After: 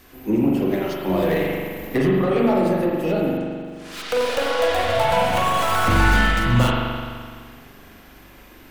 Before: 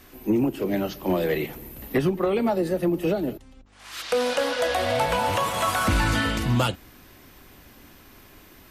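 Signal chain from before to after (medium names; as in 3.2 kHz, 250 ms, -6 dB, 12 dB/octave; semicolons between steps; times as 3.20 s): tracing distortion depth 0.067 ms; crackle 460 per s -51 dBFS; spring tank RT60 1.9 s, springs 42 ms, chirp 70 ms, DRR -3 dB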